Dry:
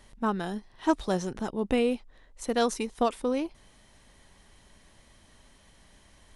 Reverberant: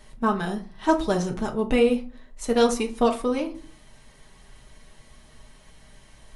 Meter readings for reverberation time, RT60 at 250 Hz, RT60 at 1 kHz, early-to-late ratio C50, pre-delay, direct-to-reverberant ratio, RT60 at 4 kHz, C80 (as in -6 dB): 0.40 s, 0.65 s, 0.40 s, 13.5 dB, 5 ms, 1.0 dB, 0.20 s, 19.5 dB